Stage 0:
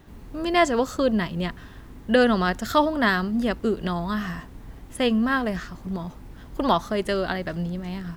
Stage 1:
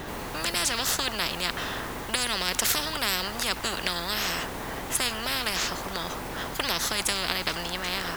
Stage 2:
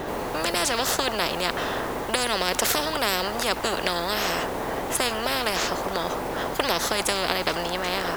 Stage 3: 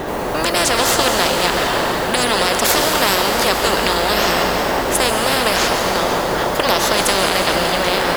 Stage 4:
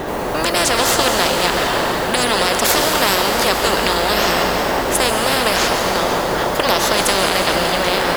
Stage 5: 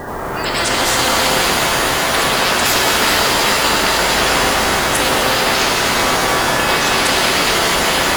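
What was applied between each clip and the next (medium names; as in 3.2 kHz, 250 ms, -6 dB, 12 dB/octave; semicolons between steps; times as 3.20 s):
spectrum-flattening compressor 10:1
peaking EQ 540 Hz +9.5 dB 2.2 oct
reverberation RT60 5.4 s, pre-delay 112 ms, DRR 1 dB; loudness maximiser +8 dB; trim -1 dB
no audible change
coarse spectral quantiser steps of 30 dB; pitch-shifted reverb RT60 3.5 s, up +7 st, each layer -2 dB, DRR -0.5 dB; trim -3 dB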